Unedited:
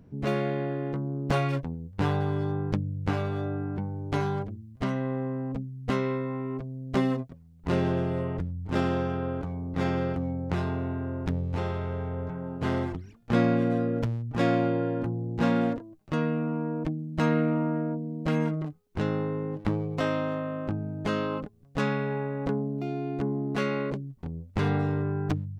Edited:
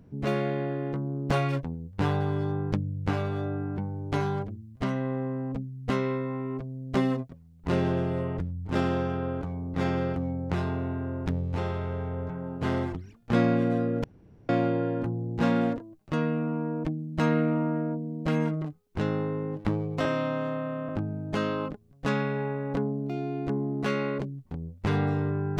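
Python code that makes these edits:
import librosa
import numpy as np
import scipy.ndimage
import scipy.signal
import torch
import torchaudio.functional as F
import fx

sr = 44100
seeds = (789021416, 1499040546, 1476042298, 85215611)

y = fx.edit(x, sr, fx.room_tone_fill(start_s=14.04, length_s=0.45),
    fx.stretch_span(start_s=20.05, length_s=0.56, factor=1.5), tone=tone)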